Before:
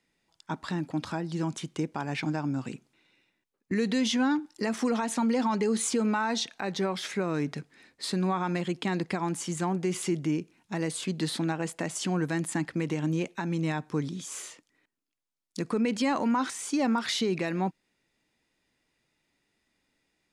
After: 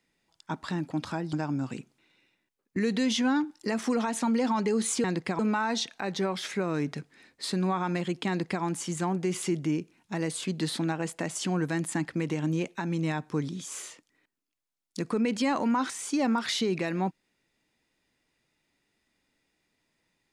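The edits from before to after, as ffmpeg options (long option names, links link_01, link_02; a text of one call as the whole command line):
ffmpeg -i in.wav -filter_complex "[0:a]asplit=4[link_01][link_02][link_03][link_04];[link_01]atrim=end=1.332[link_05];[link_02]atrim=start=2.278:end=5.992[link_06];[link_03]atrim=start=8.878:end=9.232[link_07];[link_04]atrim=start=5.988[link_08];[link_05][link_06]acrossfade=duration=0.004:curve1=hsin:curve2=hsin[link_09];[link_09][link_07]acrossfade=duration=0.004:curve1=hsin:curve2=hsin[link_10];[link_10][link_08]acrossfade=duration=0.004:curve1=hsin:curve2=hsin" out.wav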